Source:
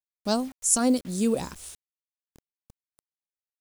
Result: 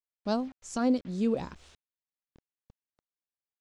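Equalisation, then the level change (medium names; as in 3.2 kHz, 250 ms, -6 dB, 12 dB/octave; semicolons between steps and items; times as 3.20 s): distance through air 190 m; -3.0 dB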